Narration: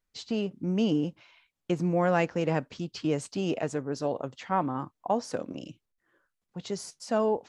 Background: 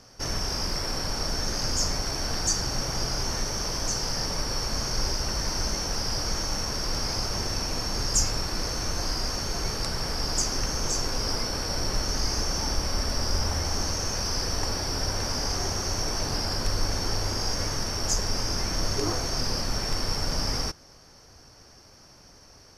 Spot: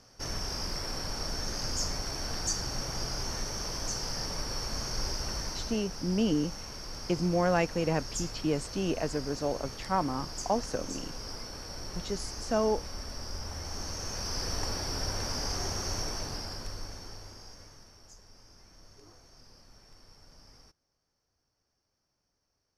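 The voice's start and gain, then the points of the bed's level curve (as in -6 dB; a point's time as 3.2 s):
5.40 s, -1.5 dB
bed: 5.35 s -6 dB
5.89 s -12.5 dB
13.41 s -12.5 dB
14.5 s -5 dB
15.97 s -5 dB
18.15 s -28.5 dB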